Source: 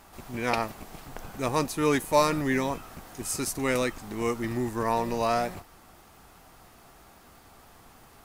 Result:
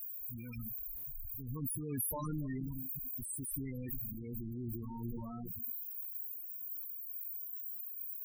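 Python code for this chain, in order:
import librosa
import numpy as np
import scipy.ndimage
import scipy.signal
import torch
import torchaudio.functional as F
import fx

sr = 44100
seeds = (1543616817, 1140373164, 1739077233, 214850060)

p1 = x + 0.5 * 10.0 ** (-25.0 / 20.0) * np.diff(np.sign(x), prepend=np.sign(x[:1]))
p2 = p1 + fx.echo_wet_lowpass(p1, sr, ms=271, feedback_pct=54, hz=3200.0, wet_db=-9.0, dry=0)
p3 = fx.transient(p2, sr, attack_db=-4, sustain_db=10)
p4 = fx.tone_stack(p3, sr, knobs='6-0-2')
p5 = fx.sample_hold(p4, sr, seeds[0], rate_hz=4500.0, jitter_pct=0)
p6 = p4 + (p5 * 10.0 ** (-7.5 / 20.0))
p7 = fx.high_shelf(p6, sr, hz=7800.0, db=12.0)
p8 = fx.spec_topn(p7, sr, count=8)
p9 = fx.buffer_glitch(p8, sr, at_s=(0.96, 5.74), block=512, repeats=6)
p10 = fx.sustainer(p9, sr, db_per_s=24.0)
y = p10 * 10.0 ** (3.5 / 20.0)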